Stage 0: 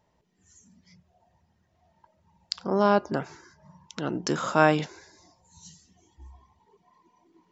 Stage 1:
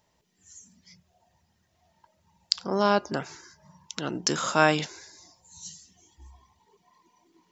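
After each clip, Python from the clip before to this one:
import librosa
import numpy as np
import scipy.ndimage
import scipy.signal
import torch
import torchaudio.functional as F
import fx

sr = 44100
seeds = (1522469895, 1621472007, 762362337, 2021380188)

y = fx.high_shelf(x, sr, hz=2400.0, db=12.0)
y = y * 10.0 ** (-2.5 / 20.0)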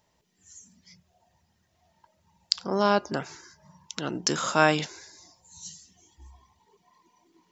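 y = x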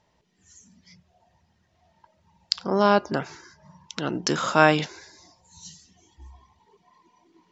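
y = fx.air_absorb(x, sr, metres=96.0)
y = y * 10.0 ** (4.0 / 20.0)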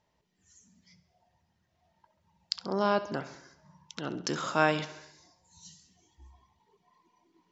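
y = fx.echo_feedback(x, sr, ms=67, feedback_pct=60, wet_db=-15.0)
y = y * 10.0 ** (-8.0 / 20.0)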